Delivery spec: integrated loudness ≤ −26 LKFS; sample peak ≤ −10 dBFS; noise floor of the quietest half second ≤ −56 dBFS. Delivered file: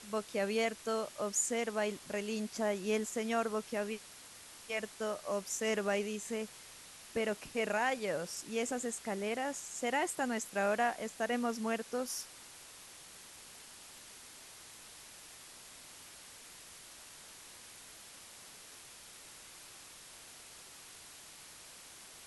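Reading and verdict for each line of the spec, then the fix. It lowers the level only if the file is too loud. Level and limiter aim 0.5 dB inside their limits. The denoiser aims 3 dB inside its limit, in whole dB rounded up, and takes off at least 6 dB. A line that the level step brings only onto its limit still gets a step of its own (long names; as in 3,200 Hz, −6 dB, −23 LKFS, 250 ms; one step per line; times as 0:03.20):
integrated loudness −36.0 LKFS: in spec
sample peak −21.0 dBFS: in spec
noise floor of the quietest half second −54 dBFS: out of spec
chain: broadband denoise 6 dB, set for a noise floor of −54 dBFS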